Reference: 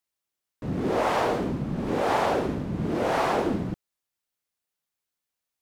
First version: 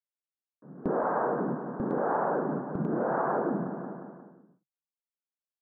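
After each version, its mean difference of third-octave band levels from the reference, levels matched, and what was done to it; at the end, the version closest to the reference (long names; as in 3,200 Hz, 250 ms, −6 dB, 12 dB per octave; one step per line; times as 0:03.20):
11.5 dB: Chebyshev band-pass filter 140–1,600 Hz, order 5
noise gate with hold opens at −20 dBFS
on a send: repeating echo 178 ms, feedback 50%, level −12 dB
on the sum: downward compressor 2 to 1, threshold −36 dBFS, peak gain reduction 9 dB
level +4.5 dB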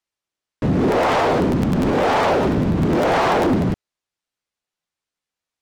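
2.5 dB: Bessel low-pass filter 6,200 Hz, order 2
leveller curve on the samples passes 2
brickwall limiter −19 dBFS, peak gain reduction 6 dB
regular buffer underruns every 0.10 s, samples 512, repeat, from 0:00.91
level +7 dB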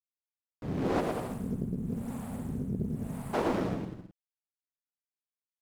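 8.5 dB: mu-law and A-law mismatch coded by A
gain on a spectral selection 0:01.00–0:03.34, 270–7,900 Hz −22 dB
on a send: bouncing-ball delay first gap 110 ms, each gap 0.8×, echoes 5
on the sum: highs frequency-modulated by the lows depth 0.74 ms
level −3.5 dB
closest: second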